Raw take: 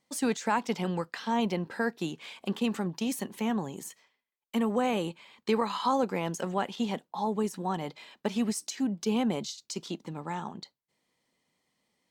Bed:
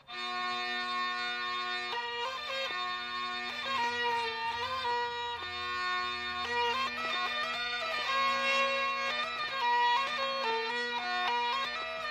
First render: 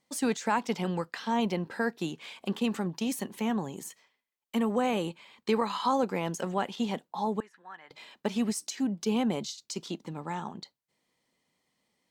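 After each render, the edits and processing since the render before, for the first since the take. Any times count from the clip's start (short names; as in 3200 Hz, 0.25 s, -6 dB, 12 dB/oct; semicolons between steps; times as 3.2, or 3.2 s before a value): 7.4–7.91 band-pass 1700 Hz, Q 3.9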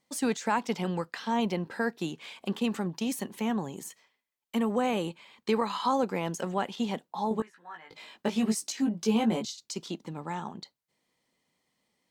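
7.29–9.45 doubler 18 ms -3 dB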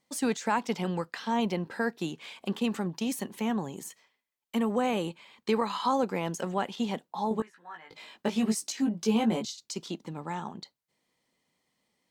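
nothing audible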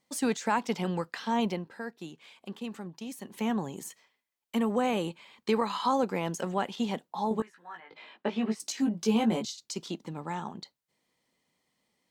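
1.47–3.42 dip -9 dB, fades 0.21 s; 7.8–8.6 three-band isolator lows -13 dB, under 200 Hz, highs -23 dB, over 3700 Hz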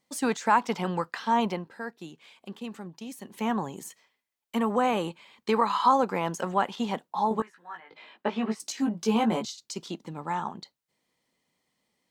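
dynamic EQ 1100 Hz, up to +8 dB, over -45 dBFS, Q 1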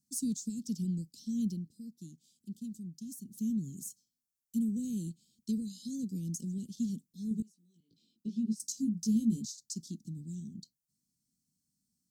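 inverse Chebyshev band-stop 700–1900 Hz, stop band 70 dB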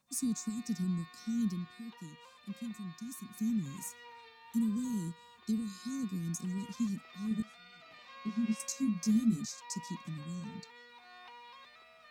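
add bed -21.5 dB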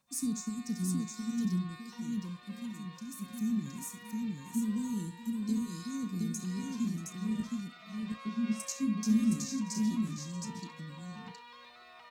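doubler 33 ms -13.5 dB; tapped delay 68/634/717 ms -13.5/-18.5/-3.5 dB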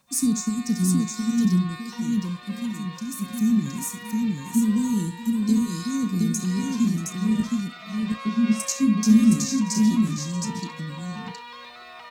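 gain +11.5 dB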